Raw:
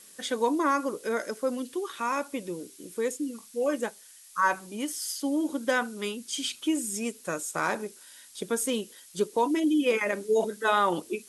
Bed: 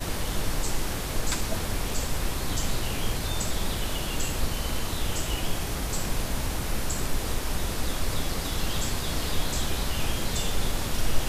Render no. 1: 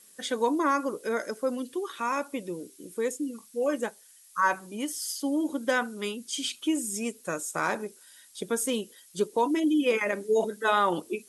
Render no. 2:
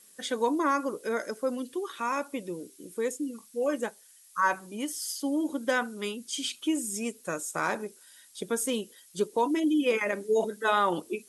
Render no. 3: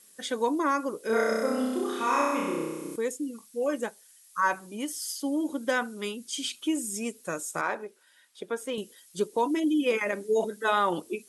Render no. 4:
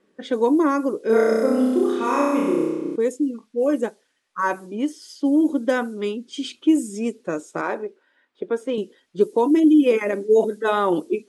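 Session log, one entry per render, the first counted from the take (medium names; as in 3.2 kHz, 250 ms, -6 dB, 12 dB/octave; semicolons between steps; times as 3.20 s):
noise reduction 6 dB, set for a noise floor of -52 dBFS
trim -1 dB
1.06–2.96 s: flutter echo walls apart 5.4 m, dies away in 1.4 s; 7.61–8.78 s: tone controls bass -13 dB, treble -13 dB
level-controlled noise filter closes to 1.8 kHz, open at -24 dBFS; peaking EQ 330 Hz +11.5 dB 1.9 oct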